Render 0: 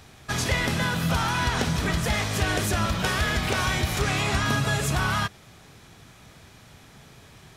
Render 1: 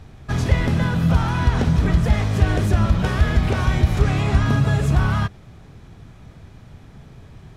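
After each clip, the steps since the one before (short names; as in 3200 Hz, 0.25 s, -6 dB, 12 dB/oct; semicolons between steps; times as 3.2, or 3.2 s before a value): tilt -3 dB/oct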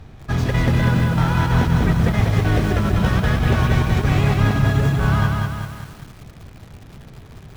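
median filter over 5 samples; negative-ratio compressor -18 dBFS, ratio -0.5; lo-fi delay 0.193 s, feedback 55%, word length 7-bit, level -3 dB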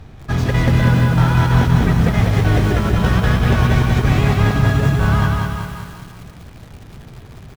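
feedback echo 0.176 s, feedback 53%, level -10 dB; gain +2 dB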